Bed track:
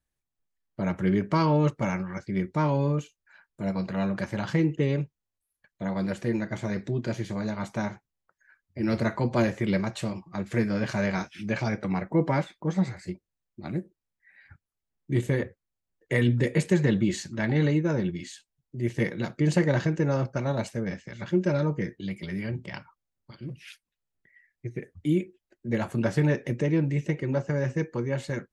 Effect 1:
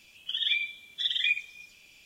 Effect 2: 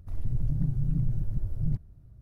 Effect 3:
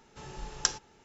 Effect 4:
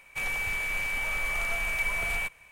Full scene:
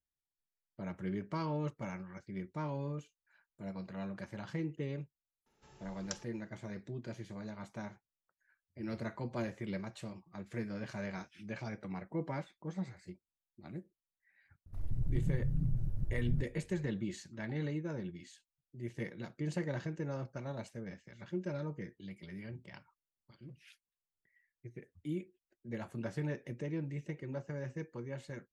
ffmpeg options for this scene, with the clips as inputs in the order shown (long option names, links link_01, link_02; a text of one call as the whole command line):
ffmpeg -i bed.wav -i cue0.wav -i cue1.wav -i cue2.wav -filter_complex "[0:a]volume=-14dB[link_01];[3:a]atrim=end=1.04,asetpts=PTS-STARTPTS,volume=-15.5dB,afade=type=in:duration=0.004:curve=hsin,afade=type=out:start_time=1.036:duration=0.004:curve=hsin,adelay=5460[link_02];[2:a]atrim=end=2.21,asetpts=PTS-STARTPTS,volume=-6dB,afade=type=in:duration=0.004:curve=hsin,afade=type=out:start_time=2.206:duration=0.004:curve=hsin,adelay=14660[link_03];[link_01][link_02][link_03]amix=inputs=3:normalize=0" out.wav